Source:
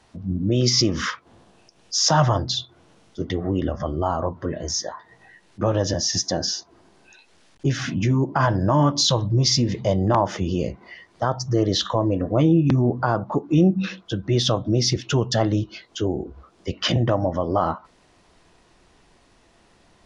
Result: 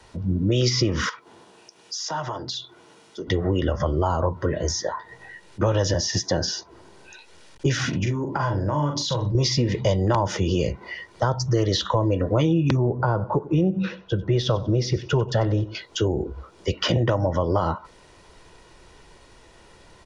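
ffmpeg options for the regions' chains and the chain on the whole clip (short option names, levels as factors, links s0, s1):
-filter_complex "[0:a]asettb=1/sr,asplit=3[s0][s1][s2];[s0]atrim=end=1.094[s3];[s1]atrim=start=1.09:end=3.27,asetpts=PTS-STARTPTS,afade=t=in:d=0.004:c=qsin,afade=t=out:st=2.176:d=0.004:c=qsin,highpass=220,acompressor=threshold=0.0178:ratio=3:attack=3.2:release=140:knee=1:detection=peak,bandreject=f=540:w=5.8[s4];[s2]atrim=start=3.266[s5];[s3][s4]acrossfade=d=0.004:c1=hsin:c2=qsin[s6];[s6][s5]acrossfade=d=0.004:c1=qsin:c2=hsin,asettb=1/sr,asplit=3[s7][s8][s9];[s7]atrim=end=7.894[s10];[s8]atrim=start=7.89:end=9.35,asetpts=PTS-STARTPTS,afade=t=in:d=0.004:c=qsin,afade=t=out:st=1.456:d=0.004:c=qsin,acompressor=threshold=0.0501:ratio=6:attack=3.2:release=140:knee=1:detection=peak,asplit=2[s11][s12];[s12]adelay=41,volume=0.531[s13];[s11][s13]amix=inputs=2:normalize=0,atrim=end_sample=64386[s14];[s9]atrim=start=9.346[s15];[s10][s14]acrossfade=d=0.004:c1=hsin:c2=qsin[s16];[s16][s15]acrossfade=d=0.004:c1=qsin:c2=hsin,asettb=1/sr,asplit=3[s17][s18][s19];[s17]atrim=end=12.774[s20];[s18]atrim=start=12.77:end=15.75,asetpts=PTS-STARTPTS,afade=t=in:d=0.004:c=qsin,afade=t=out:st=2.976:d=0.004:c=qsin,lowpass=f=1000:p=1,equalizer=f=270:t=o:w=0.41:g=-6,aecho=1:1:94|188|282:0.106|0.0339|0.0108,atrim=end_sample=131418[s21];[s19]atrim=start=15.746[s22];[s20][s21]acrossfade=d=0.004:c1=hsin:c2=qsin[s23];[s23][s22]acrossfade=d=0.004:c1=qsin:c2=hsin,aecho=1:1:2.1:0.4,acrossover=split=220|980|3300[s24][s25][s26][s27];[s24]acompressor=threshold=0.0398:ratio=4[s28];[s25]acompressor=threshold=0.0355:ratio=4[s29];[s26]acompressor=threshold=0.0178:ratio=4[s30];[s27]acompressor=threshold=0.0158:ratio=4[s31];[s28][s29][s30][s31]amix=inputs=4:normalize=0,volume=1.88"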